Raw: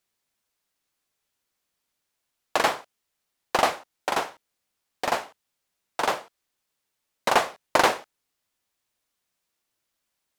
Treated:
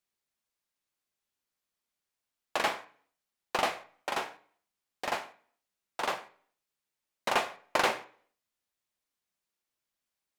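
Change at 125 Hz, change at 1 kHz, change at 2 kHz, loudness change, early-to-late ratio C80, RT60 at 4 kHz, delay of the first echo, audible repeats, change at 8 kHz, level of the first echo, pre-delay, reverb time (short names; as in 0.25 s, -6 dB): -8.0 dB, -7.5 dB, -5.5 dB, -7.0 dB, 19.0 dB, 0.45 s, none, none, -8.0 dB, none, 3 ms, 0.50 s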